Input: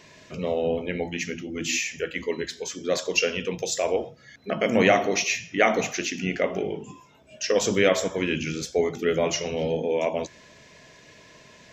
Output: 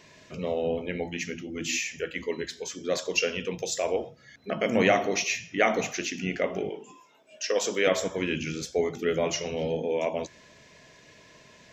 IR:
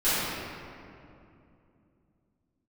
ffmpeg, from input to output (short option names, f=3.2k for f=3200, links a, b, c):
-filter_complex "[0:a]asettb=1/sr,asplit=3[a][b][c];[a]atrim=end=6.694[d];[b]atrim=start=6.69:end=7.87,asetpts=PTS-STARTPTS,afade=t=in:d=0.004:c=qsin,afade=t=out:st=1.176:d=0.004:c=qsin,highpass=350[e];[c]atrim=start=7.866[f];[d][e]acrossfade=d=0.004:c1=hsin:c2=qsin[g];[g][f]acrossfade=d=0.004:c1=qsin:c2=hsin,volume=-3dB"